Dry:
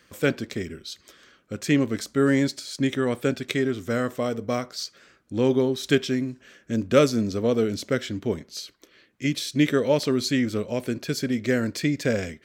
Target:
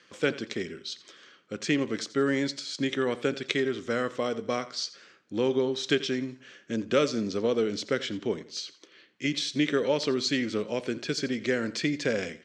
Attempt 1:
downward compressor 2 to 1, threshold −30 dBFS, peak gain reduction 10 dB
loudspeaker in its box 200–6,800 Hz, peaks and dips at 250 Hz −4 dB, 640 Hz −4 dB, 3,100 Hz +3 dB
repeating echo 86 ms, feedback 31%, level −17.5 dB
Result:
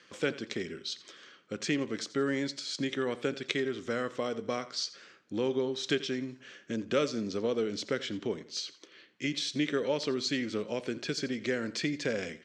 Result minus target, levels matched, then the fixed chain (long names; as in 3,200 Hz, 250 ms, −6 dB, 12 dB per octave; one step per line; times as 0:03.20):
downward compressor: peak gain reduction +4.5 dB
downward compressor 2 to 1, threshold −21 dBFS, peak gain reduction 5.5 dB
loudspeaker in its box 200–6,800 Hz, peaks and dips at 250 Hz −4 dB, 640 Hz −4 dB, 3,100 Hz +3 dB
repeating echo 86 ms, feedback 31%, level −17.5 dB